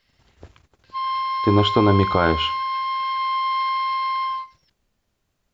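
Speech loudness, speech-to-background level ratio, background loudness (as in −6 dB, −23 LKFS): −20.0 LKFS, 4.0 dB, −24.0 LKFS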